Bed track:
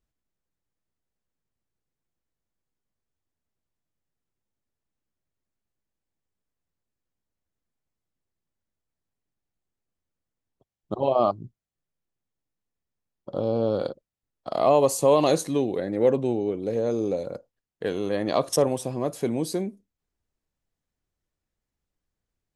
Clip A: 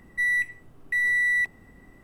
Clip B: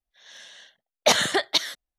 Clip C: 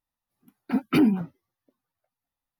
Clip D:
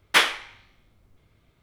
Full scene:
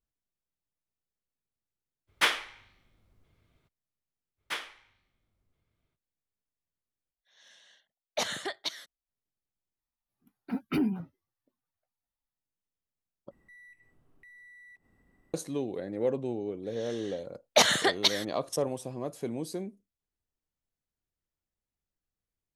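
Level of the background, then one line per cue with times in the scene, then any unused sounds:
bed track -8.5 dB
2.07 s: add D -7 dB, fades 0.02 s
4.36 s: add D -17.5 dB, fades 0.05 s
7.11 s: replace with B -12.5 dB
9.79 s: replace with C -9 dB + bass shelf 62 Hz +10 dB
13.31 s: replace with A -15.5 dB + compression 3:1, threshold -43 dBFS
16.50 s: add B -2.5 dB

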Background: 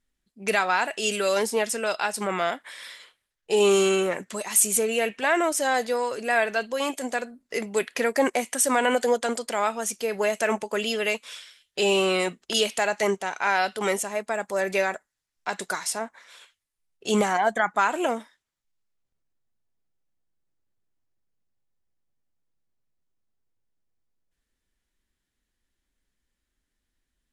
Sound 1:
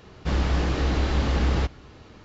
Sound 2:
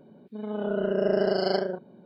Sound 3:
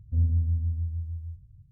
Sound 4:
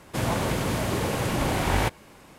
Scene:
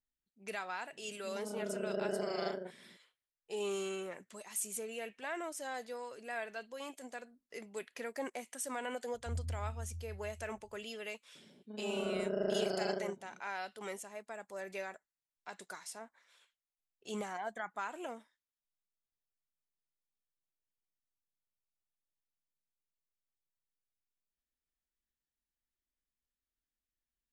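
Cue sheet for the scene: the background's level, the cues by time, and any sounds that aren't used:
background -18 dB
0.92 s: add 2 -12.5 dB + high-pass 100 Hz
9.14 s: add 3 -15.5 dB
11.35 s: add 2 -10.5 dB
not used: 1, 4

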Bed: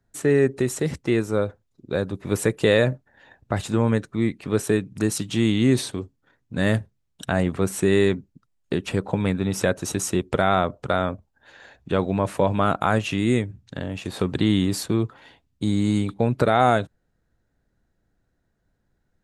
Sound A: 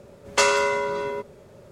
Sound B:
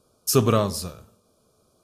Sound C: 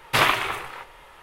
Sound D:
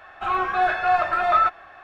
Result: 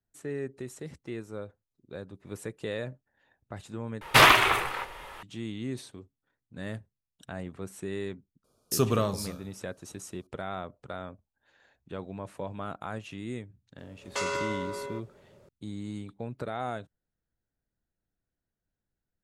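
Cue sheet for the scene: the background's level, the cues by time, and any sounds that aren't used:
bed -16.5 dB
4.01 s: replace with C -5 dB + sine folder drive 5 dB, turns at -3.5 dBFS
8.44 s: add B -6.5 dB
13.78 s: add A -9.5 dB + peak limiter -11 dBFS
not used: D

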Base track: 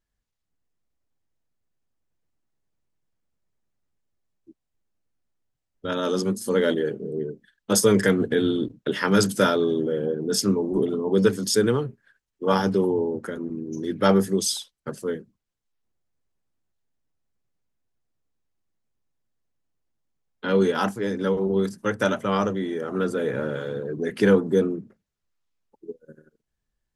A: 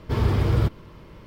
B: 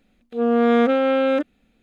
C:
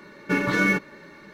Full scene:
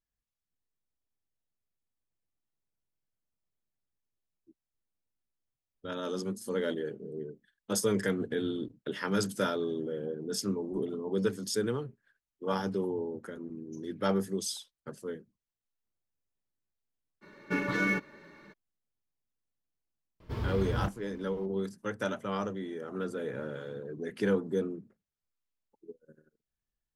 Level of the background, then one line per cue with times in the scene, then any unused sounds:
base track -10.5 dB
17.21 s: add C -7.5 dB, fades 0.02 s + treble shelf 5.7 kHz -4 dB
20.20 s: add A -12 dB
not used: B

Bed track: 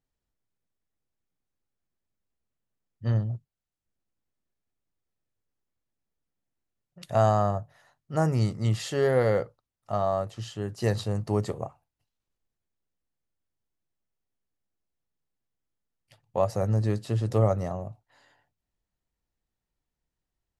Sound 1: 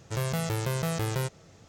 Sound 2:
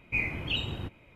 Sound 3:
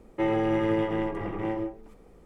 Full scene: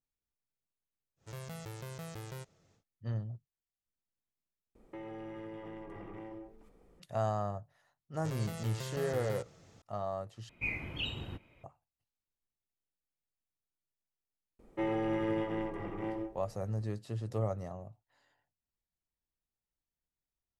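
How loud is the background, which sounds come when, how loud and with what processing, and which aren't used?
bed track -11 dB
1.16 s: add 1 -15 dB, fades 0.10 s
4.75 s: replace with 3 -9.5 dB + compression 5:1, threshold -33 dBFS
8.14 s: add 1 -5.5 dB + peak limiter -27 dBFS
10.49 s: replace with 2 -6.5 dB
14.59 s: add 3 -7.5 dB

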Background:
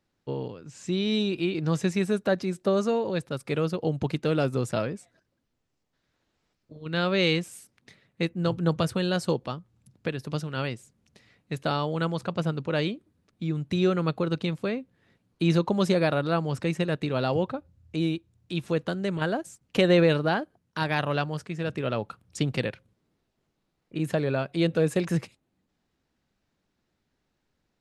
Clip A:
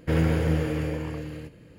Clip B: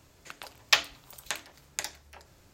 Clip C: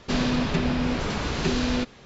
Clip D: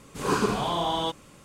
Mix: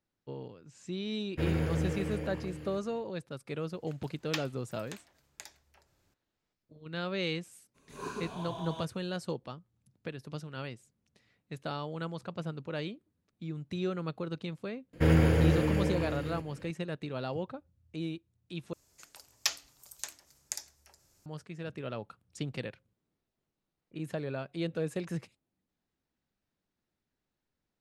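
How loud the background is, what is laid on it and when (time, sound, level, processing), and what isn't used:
background -10 dB
1.30 s: add A -8 dB, fades 0.10 s
3.61 s: add B -14 dB
7.74 s: add D -16.5 dB, fades 0.02 s + rippled EQ curve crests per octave 1.5, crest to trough 7 dB
14.93 s: add A -0.5 dB
18.73 s: replace with B -13 dB + high-order bell 8 kHz +11.5 dB
not used: C

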